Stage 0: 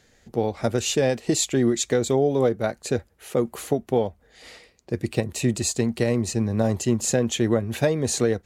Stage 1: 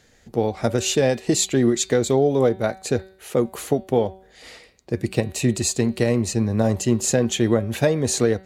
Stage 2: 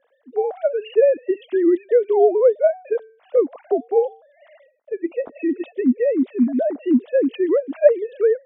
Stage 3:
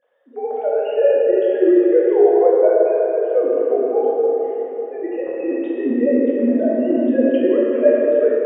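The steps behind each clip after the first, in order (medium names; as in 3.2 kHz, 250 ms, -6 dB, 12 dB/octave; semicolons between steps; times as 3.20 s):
de-hum 189.9 Hz, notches 25; trim +2.5 dB
formants replaced by sine waves; fifteen-band graphic EQ 250 Hz +11 dB, 630 Hz +10 dB, 2.5 kHz -4 dB; trim -4.5 dB
plate-style reverb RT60 4.4 s, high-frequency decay 0.45×, DRR -7 dB; trim -5.5 dB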